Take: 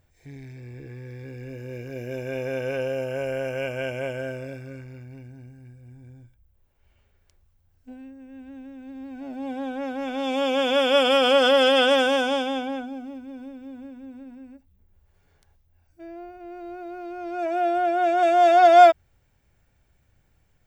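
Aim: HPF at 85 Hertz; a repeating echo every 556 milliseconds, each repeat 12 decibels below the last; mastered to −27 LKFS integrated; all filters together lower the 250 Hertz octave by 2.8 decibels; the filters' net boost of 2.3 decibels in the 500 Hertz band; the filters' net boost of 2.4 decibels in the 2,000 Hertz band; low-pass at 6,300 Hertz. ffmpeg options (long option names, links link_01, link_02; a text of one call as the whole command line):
ffmpeg -i in.wav -af "highpass=85,lowpass=6300,equalizer=frequency=250:width_type=o:gain=-4.5,equalizer=frequency=500:width_type=o:gain=3.5,equalizer=frequency=2000:width_type=o:gain=3.5,aecho=1:1:556|1112|1668:0.251|0.0628|0.0157,volume=-8dB" out.wav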